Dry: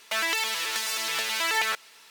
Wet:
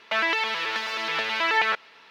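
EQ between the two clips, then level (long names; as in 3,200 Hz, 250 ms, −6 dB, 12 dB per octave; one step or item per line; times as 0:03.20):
high-pass filter 46 Hz
high-frequency loss of the air 300 metres
+6.5 dB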